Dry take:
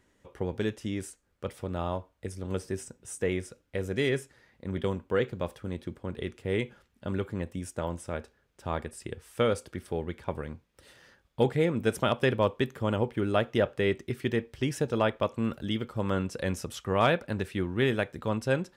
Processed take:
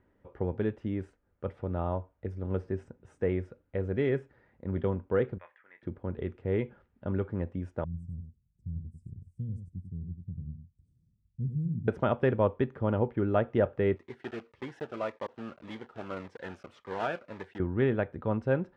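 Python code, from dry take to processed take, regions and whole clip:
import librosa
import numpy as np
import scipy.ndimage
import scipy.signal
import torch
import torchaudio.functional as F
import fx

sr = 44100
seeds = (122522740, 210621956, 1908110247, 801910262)

y = fx.chain(x, sr, fx.highpass_res(hz=1900.0, q=4.7),
    fx.spacing_loss(db_at_10k=38),
    fx.doubler(ms=29.0, db=-11), at=(5.38, 5.83))
y = fx.chain(y, sr, fx.ellip_bandstop(low_hz=170.0, high_hz=7900.0, order=3, stop_db=80),
    fx.echo_single(ms=95, db=-7.0), at=(7.84, 11.88))
y = fx.chain(y, sr, fx.block_float(bits=3),
    fx.highpass(hz=890.0, slope=6),
    fx.notch_cascade(direction='falling', hz=1.8), at=(13.96, 17.6))
y = scipy.signal.sosfilt(scipy.signal.butter(2, 1400.0, 'lowpass', fs=sr, output='sos'), y)
y = fx.peak_eq(y, sr, hz=91.0, db=3.5, octaves=0.24)
y = fx.notch(y, sr, hz=1100.0, q=15.0)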